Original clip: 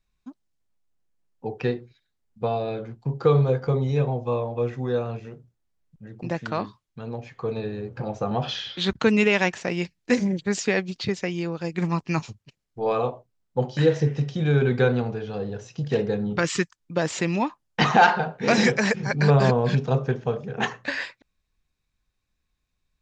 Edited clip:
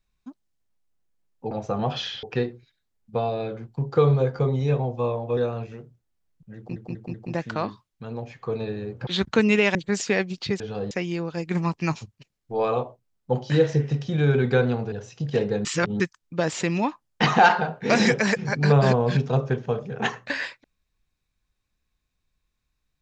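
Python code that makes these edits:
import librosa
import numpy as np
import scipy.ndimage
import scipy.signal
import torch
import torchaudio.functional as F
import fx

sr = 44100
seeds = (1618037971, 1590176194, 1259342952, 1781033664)

y = fx.edit(x, sr, fx.cut(start_s=4.65, length_s=0.25),
    fx.stutter(start_s=6.1, slice_s=0.19, count=4),
    fx.move(start_s=8.03, length_s=0.72, to_s=1.51),
    fx.cut(start_s=9.43, length_s=0.9),
    fx.move(start_s=15.19, length_s=0.31, to_s=11.18),
    fx.reverse_span(start_s=16.23, length_s=0.35), tone=tone)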